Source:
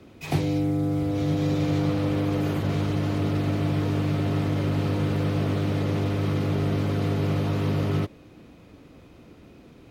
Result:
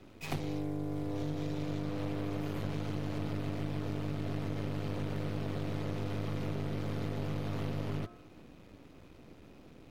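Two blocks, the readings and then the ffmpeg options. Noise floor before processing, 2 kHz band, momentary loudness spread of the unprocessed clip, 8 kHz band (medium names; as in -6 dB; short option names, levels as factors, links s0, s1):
-51 dBFS, -10.0 dB, 1 LU, no reading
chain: -af "aeval=exprs='if(lt(val(0),0),0.251*val(0),val(0))':c=same,bandreject=f=117.2:t=h:w=4,bandreject=f=234.4:t=h:w=4,bandreject=f=351.6:t=h:w=4,bandreject=f=468.8:t=h:w=4,bandreject=f=586:t=h:w=4,bandreject=f=703.2:t=h:w=4,bandreject=f=820.4:t=h:w=4,bandreject=f=937.6:t=h:w=4,bandreject=f=1054.8:t=h:w=4,bandreject=f=1172:t=h:w=4,bandreject=f=1289.2:t=h:w=4,bandreject=f=1406.4:t=h:w=4,bandreject=f=1523.6:t=h:w=4,bandreject=f=1640.8:t=h:w=4,bandreject=f=1758:t=h:w=4,acompressor=threshold=0.0355:ratio=6,volume=0.794"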